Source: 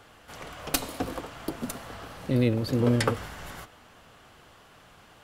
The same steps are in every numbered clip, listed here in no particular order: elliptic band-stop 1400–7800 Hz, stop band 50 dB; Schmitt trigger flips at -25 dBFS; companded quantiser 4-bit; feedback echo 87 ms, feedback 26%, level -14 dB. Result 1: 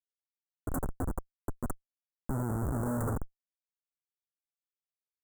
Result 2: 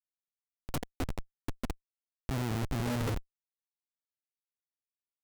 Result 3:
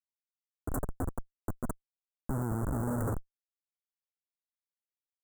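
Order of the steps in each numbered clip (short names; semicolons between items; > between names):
feedback echo > companded quantiser > Schmitt trigger > elliptic band-stop; feedback echo > companded quantiser > elliptic band-stop > Schmitt trigger; companded quantiser > feedback echo > Schmitt trigger > elliptic band-stop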